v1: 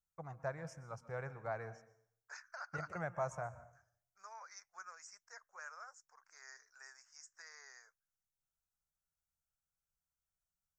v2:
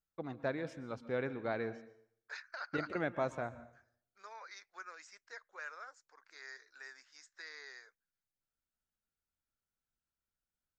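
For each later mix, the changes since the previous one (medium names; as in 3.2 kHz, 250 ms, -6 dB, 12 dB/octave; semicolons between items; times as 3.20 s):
master: remove FFT filter 180 Hz 0 dB, 250 Hz -23 dB, 710 Hz -1 dB, 1.2 kHz -1 dB, 2.5 kHz -11 dB, 3.8 kHz -22 dB, 5.6 kHz +5 dB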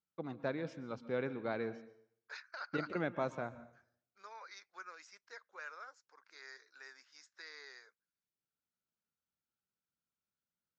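master: add cabinet simulation 110–6500 Hz, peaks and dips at 180 Hz +4 dB, 690 Hz -3 dB, 1.8 kHz -4 dB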